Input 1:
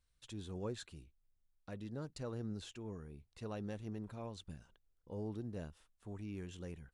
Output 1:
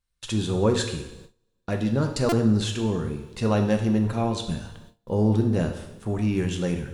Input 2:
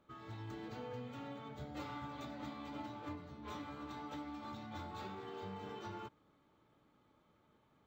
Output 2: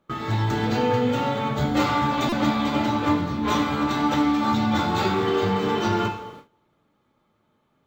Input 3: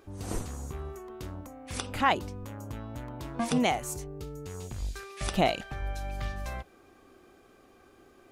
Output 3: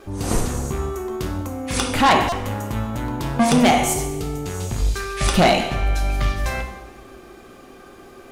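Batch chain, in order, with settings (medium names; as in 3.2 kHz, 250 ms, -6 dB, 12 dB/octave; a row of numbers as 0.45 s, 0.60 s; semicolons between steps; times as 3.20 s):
two-slope reverb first 0.82 s, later 2.4 s, from -18 dB, DRR 3.5 dB; in parallel at -9.5 dB: sine folder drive 11 dB, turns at -10 dBFS; on the sum: gate with hold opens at -44 dBFS; buffer glitch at 2.29 s, samples 128, times 10; peak normalisation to -9 dBFS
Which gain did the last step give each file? +10.5 dB, +14.0 dB, +4.0 dB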